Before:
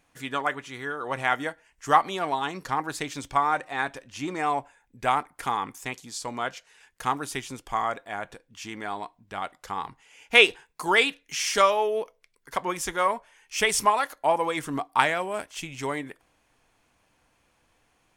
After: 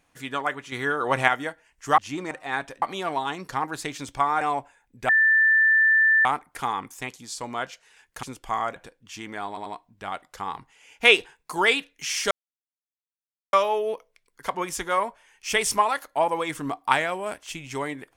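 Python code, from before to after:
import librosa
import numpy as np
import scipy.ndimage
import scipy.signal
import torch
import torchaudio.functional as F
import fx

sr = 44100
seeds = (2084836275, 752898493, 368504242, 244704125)

y = fx.edit(x, sr, fx.clip_gain(start_s=0.72, length_s=0.56, db=7.0),
    fx.swap(start_s=1.98, length_s=1.59, other_s=4.08, other_length_s=0.33),
    fx.insert_tone(at_s=5.09, length_s=1.16, hz=1770.0, db=-15.0),
    fx.cut(start_s=7.07, length_s=0.39),
    fx.cut(start_s=7.99, length_s=0.25),
    fx.stutter(start_s=8.96, slice_s=0.09, count=3),
    fx.insert_silence(at_s=11.61, length_s=1.22), tone=tone)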